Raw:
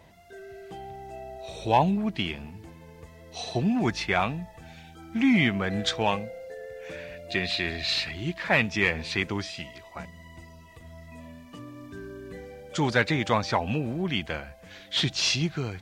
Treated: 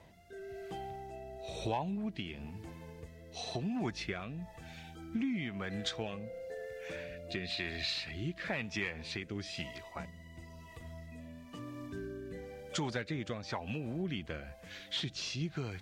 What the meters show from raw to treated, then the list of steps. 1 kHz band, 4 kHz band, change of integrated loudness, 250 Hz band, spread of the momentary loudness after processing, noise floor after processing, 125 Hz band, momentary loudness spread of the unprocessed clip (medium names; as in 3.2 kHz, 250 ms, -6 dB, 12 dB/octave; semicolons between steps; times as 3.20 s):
-14.5 dB, -10.5 dB, -13.0 dB, -10.5 dB, 13 LU, -54 dBFS, -9.5 dB, 20 LU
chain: compression 6:1, threshold -31 dBFS, peak gain reduction 15 dB; rotary cabinet horn 1 Hz; trim -1 dB